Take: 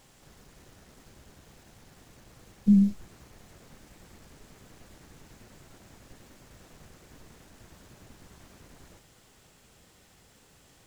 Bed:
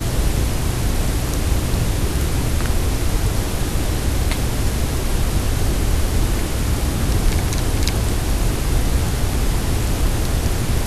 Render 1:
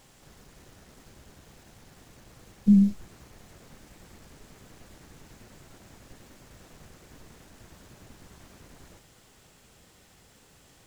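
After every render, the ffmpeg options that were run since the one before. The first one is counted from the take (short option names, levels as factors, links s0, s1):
-af "volume=1.19"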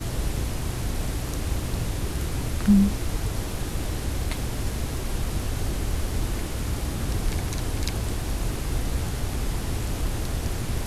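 -filter_complex "[1:a]volume=0.376[s0];[0:a][s0]amix=inputs=2:normalize=0"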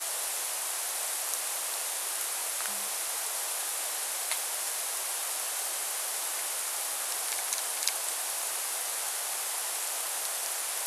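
-af "highpass=f=650:w=0.5412,highpass=f=650:w=1.3066,equalizer=f=9900:w=0.83:g=11"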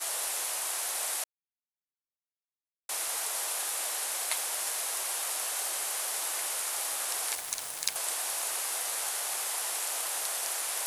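-filter_complex "[0:a]asettb=1/sr,asplit=3[s0][s1][s2];[s0]atrim=end=3.634[s3];[s1]atrim=start=3.63:end=4.14,asetpts=PTS-STARTPTS,afade=t=in:d=0.004:c=qsin,afade=t=out:st=0.506:d=0.004:c=qsin,highpass=170[s4];[s2]atrim=start=4.136[s5];[s3][s4]acrossfade=d=0.004:c1=hsin:c2=qsin[s6];[s6][s5]acrossfade=d=0.004:c1=qsin:c2=hsin,asettb=1/sr,asplit=3[s7][s8][s9];[s7]atrim=end=7.354[s10];[s8]atrim=start=7.35:end=7.96,asetpts=PTS-STARTPTS,afade=t=in:d=0.004:c=qsin,afade=t=out:st=0.606:d=0.004:c=qsin,aeval=exprs='sgn(val(0))*max(abs(val(0))-0.015,0)':c=same[s11];[s9]atrim=start=7.956[s12];[s10][s11]acrossfade=d=0.004:c1=hsin:c2=qsin[s13];[s13][s12]acrossfade=d=0.004:c1=qsin:c2=hsin,asplit=3[s14][s15][s16];[s14]atrim=end=1.24,asetpts=PTS-STARTPTS,afade=t=out:st=1.236:d=0.004:c=hsin[s17];[s15]atrim=start=1.24:end=2.89,asetpts=PTS-STARTPTS,volume=0[s18];[s16]atrim=start=2.89,asetpts=PTS-STARTPTS,afade=t=in:d=0.004:c=hsin[s19];[s17][s18][s19]concat=n=3:v=0:a=1"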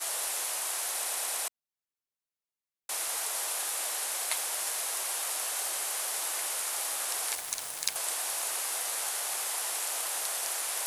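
-filter_complex "[0:a]asplit=6[s0][s1][s2][s3][s4][s5];[s0]atrim=end=1.042[s6];[s1]atrim=start=0.928:end=1.042[s7];[s2]atrim=start=0.928:end=1.042[s8];[s3]atrim=start=0.928:end=1.042[s9];[s4]atrim=start=0.928:end=1.042[s10];[s5]atrim=start=1.478[s11];[s6][s7]acrossfade=d=0.004:c1=hsin:c2=hsin[s12];[s12][s8]acrossfade=d=0.004:c1=hsin:c2=hsin[s13];[s13][s9]acrossfade=d=0.004:c1=hsin:c2=hsin[s14];[s14][s10]acrossfade=d=0.004:c1=hsin:c2=hsin[s15];[s15][s11]acrossfade=d=0.004:c1=hsin:c2=hsin"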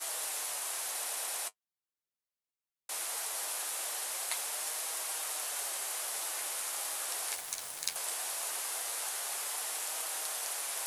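-af "flanger=delay=6.3:depth=5.6:regen=-41:speed=0.2:shape=sinusoidal"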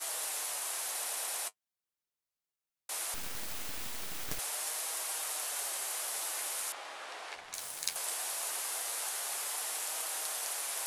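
-filter_complex "[0:a]asettb=1/sr,asplit=3[s0][s1][s2];[s0]atrim=end=3.144[s3];[s1]atrim=start=3.14:end=4.39,asetpts=PTS-STARTPTS,afade=t=in:d=0.004:c=qsin,afade=t=out:st=1.246:d=0.004:c=qsin,aeval=exprs='abs(val(0))':c=same[s4];[s2]atrim=start=4.386[s5];[s3][s4]acrossfade=d=0.004:c1=hsin:c2=qsin[s6];[s6][s5]acrossfade=d=0.004:c1=qsin:c2=hsin,asettb=1/sr,asplit=3[s7][s8][s9];[s7]atrim=end=6.724[s10];[s8]atrim=start=6.72:end=7.54,asetpts=PTS-STARTPTS,afade=t=in:d=0.004:c=qsin,afade=t=out:st=0.816:d=0.004:c=qsin,lowpass=3000[s11];[s9]atrim=start=7.536[s12];[s10][s11]acrossfade=d=0.004:c1=hsin:c2=qsin[s13];[s13][s12]acrossfade=d=0.004:c1=qsin:c2=hsin"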